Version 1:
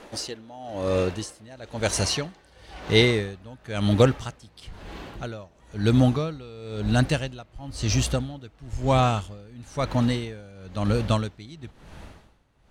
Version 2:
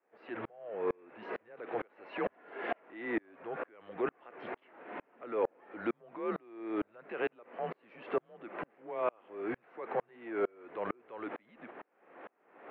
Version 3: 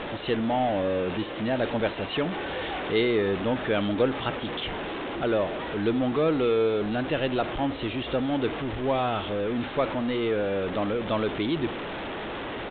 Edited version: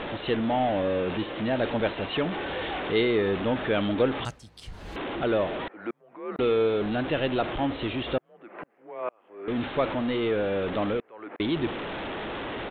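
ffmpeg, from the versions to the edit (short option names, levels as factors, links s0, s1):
-filter_complex "[1:a]asplit=3[s0][s1][s2];[2:a]asplit=5[s3][s4][s5][s6][s7];[s3]atrim=end=4.252[s8];[0:a]atrim=start=4.248:end=4.962[s9];[s4]atrim=start=4.958:end=5.682[s10];[s0]atrim=start=5.678:end=6.392[s11];[s5]atrim=start=6.388:end=8.182[s12];[s1]atrim=start=8.178:end=9.482[s13];[s6]atrim=start=9.478:end=11.002[s14];[s2]atrim=start=10.998:end=11.402[s15];[s7]atrim=start=11.398[s16];[s8][s9]acrossfade=d=0.004:c1=hsin:c2=hsin[s17];[s17][s10]acrossfade=d=0.004:c1=hsin:c2=hsin[s18];[s18][s11]acrossfade=d=0.004:c1=hsin:c2=hsin[s19];[s19][s12]acrossfade=d=0.004:c1=hsin:c2=hsin[s20];[s20][s13]acrossfade=d=0.004:c1=hsin:c2=hsin[s21];[s21][s14]acrossfade=d=0.004:c1=hsin:c2=hsin[s22];[s22][s15]acrossfade=d=0.004:c1=hsin:c2=hsin[s23];[s23][s16]acrossfade=d=0.004:c1=hsin:c2=hsin"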